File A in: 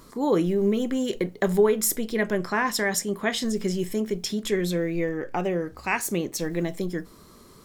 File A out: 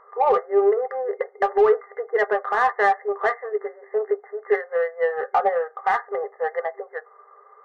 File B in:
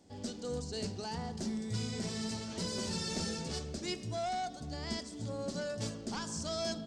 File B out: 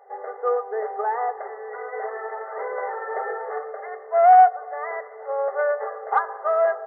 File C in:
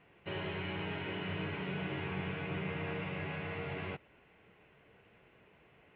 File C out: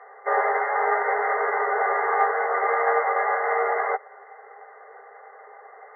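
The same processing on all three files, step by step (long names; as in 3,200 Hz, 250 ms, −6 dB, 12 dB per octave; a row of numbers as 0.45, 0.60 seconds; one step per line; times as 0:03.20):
brick-wall band-pass 390–2,100 Hz
hollow resonant body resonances 790/1,200 Hz, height 17 dB, ringing for 90 ms
in parallel at −5 dB: soft clipping −24 dBFS
on the sum: boost into a limiter +14.5 dB
expander for the loud parts 1.5 to 1, over −24 dBFS
loudness normalisation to −23 LKFS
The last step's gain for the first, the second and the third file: −8.0, +2.0, +1.5 decibels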